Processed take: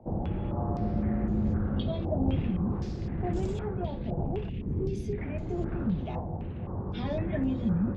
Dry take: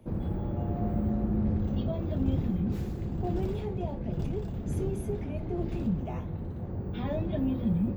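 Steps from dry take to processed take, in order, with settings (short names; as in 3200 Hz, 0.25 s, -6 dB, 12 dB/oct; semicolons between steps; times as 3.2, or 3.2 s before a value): 4.49–5.18 band shelf 950 Hz -13.5 dB; stepped low-pass 3.9 Hz 770–7200 Hz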